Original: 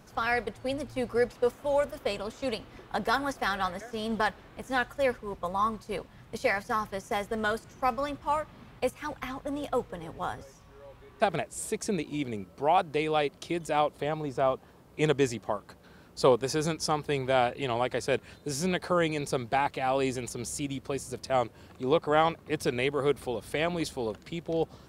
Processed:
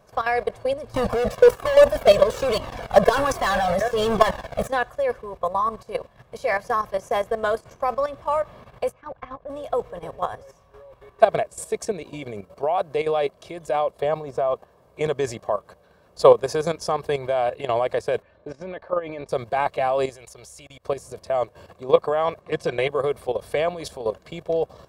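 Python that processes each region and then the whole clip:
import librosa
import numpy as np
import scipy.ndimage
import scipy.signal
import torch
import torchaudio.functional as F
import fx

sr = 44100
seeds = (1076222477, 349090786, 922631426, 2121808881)

y = fx.chain(x, sr, fx.leveller(passes=5),
    fx.peak_eq(hz=170.0, db=4.0, octaves=1.1),
    fx.comb_cascade(direction='falling', hz=1.2), at=(0.94, 4.68))
y = fx.chain(y, sr, fx.level_steps(step_db=19),
    fx.spacing_loss(db_at_10k=26), at=(8.92, 9.5))
y = fx.chain(y, sr, fx.lowpass(hz=2400.0, slope=12),
    fx.level_steps(step_db=12),
    fx.comb(ms=3.4, depth=0.42), at=(18.22, 19.29))
y = fx.chain(y, sr, fx.peak_eq(hz=230.0, db=-11.0, octaves=2.1),
    fx.level_steps(step_db=22), at=(20.09, 20.85))
y = fx.chain(y, sr, fx.lowpass(hz=8500.0, slope=12),
    fx.comb(ms=5.8, depth=0.53), at=(22.41, 22.89))
y = fx.peak_eq(y, sr, hz=700.0, db=9.5, octaves=1.5)
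y = y + 0.46 * np.pad(y, (int(1.8 * sr / 1000.0), 0))[:len(y)]
y = fx.level_steps(y, sr, step_db=12)
y = F.gain(torch.from_numpy(y), 3.0).numpy()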